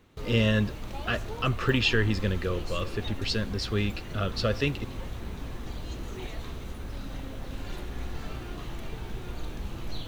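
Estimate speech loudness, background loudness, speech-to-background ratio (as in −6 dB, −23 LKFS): −28.5 LKFS, −39.0 LKFS, 10.5 dB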